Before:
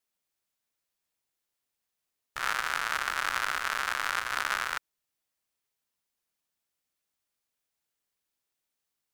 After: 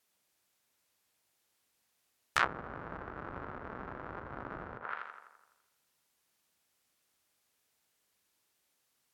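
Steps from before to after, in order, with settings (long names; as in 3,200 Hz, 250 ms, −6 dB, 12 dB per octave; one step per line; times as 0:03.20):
high-pass filter 48 Hz
tape delay 82 ms, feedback 63%, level −7.5 dB, low-pass 3,000 Hz
treble cut that deepens with the level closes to 330 Hz, closed at −27.5 dBFS
level +8 dB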